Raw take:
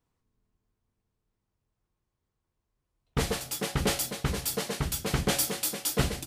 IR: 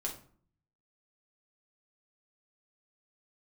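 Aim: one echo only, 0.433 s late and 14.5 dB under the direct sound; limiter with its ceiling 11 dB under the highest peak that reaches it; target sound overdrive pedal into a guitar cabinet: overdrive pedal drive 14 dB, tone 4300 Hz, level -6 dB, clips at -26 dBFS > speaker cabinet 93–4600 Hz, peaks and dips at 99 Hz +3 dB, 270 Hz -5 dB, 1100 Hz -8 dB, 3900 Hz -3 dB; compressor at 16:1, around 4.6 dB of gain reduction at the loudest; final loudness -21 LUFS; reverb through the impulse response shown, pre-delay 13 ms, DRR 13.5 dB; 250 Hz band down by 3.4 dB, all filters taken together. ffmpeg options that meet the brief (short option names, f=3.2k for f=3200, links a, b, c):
-filter_complex "[0:a]equalizer=f=250:t=o:g=-3,acompressor=threshold=-27dB:ratio=16,alimiter=level_in=4dB:limit=-24dB:level=0:latency=1,volume=-4dB,aecho=1:1:433:0.188,asplit=2[a][b];[1:a]atrim=start_sample=2205,adelay=13[c];[b][c]afir=irnorm=-1:irlink=0,volume=-14.5dB[d];[a][d]amix=inputs=2:normalize=0,asplit=2[e][f];[f]highpass=f=720:p=1,volume=14dB,asoftclip=type=tanh:threshold=-26dB[g];[e][g]amix=inputs=2:normalize=0,lowpass=f=4.3k:p=1,volume=-6dB,highpass=93,equalizer=f=99:t=q:w=4:g=3,equalizer=f=270:t=q:w=4:g=-5,equalizer=f=1.1k:t=q:w=4:g=-8,equalizer=f=3.9k:t=q:w=4:g=-3,lowpass=f=4.6k:w=0.5412,lowpass=f=4.6k:w=1.3066,volume=17.5dB"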